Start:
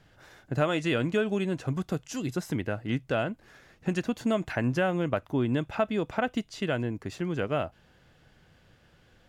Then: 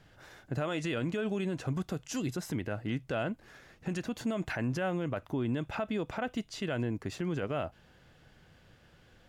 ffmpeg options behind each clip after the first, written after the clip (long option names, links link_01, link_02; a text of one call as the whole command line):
ffmpeg -i in.wav -af "alimiter=level_in=0.5dB:limit=-24dB:level=0:latency=1:release=57,volume=-0.5dB" out.wav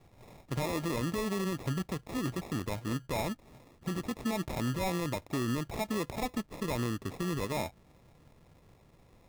ffmpeg -i in.wav -af "acrusher=samples=29:mix=1:aa=0.000001" out.wav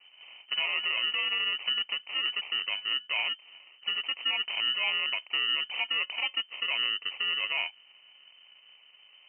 ffmpeg -i in.wav -af "lowpass=frequency=2600:width_type=q:width=0.5098,lowpass=frequency=2600:width_type=q:width=0.6013,lowpass=frequency=2600:width_type=q:width=0.9,lowpass=frequency=2600:width_type=q:width=2.563,afreqshift=-3100,volume=3dB" out.wav